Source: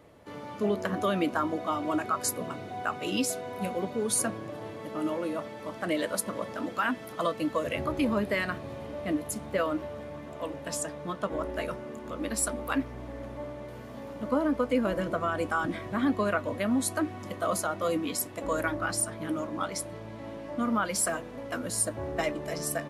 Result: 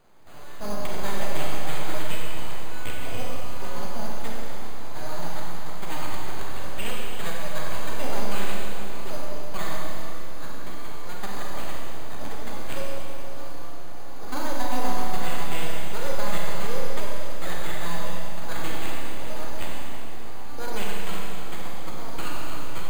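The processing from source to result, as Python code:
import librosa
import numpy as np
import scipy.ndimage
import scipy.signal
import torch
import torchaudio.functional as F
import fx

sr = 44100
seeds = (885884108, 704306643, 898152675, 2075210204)

y = np.repeat(scipy.signal.resample_poly(x, 1, 8), 8)[:len(x)]
y = np.abs(y)
y = fx.rev_schroeder(y, sr, rt60_s=2.8, comb_ms=31, drr_db=-3.0)
y = F.gain(torch.from_numpy(y), -3.0).numpy()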